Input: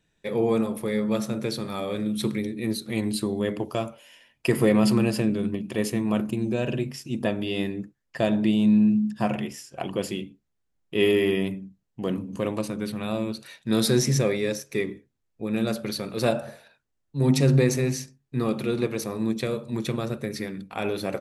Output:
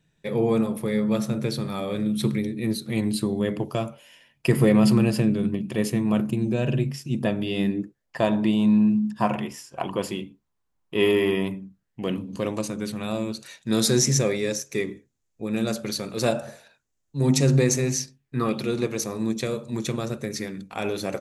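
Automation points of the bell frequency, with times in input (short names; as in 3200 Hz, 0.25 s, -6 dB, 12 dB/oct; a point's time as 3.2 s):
bell +10 dB 0.58 oct
7.59 s 150 Hz
8.2 s 1000 Hz
11.59 s 1000 Hz
12.6 s 6800 Hz
17.96 s 6800 Hz
18.43 s 1100 Hz
18.64 s 6600 Hz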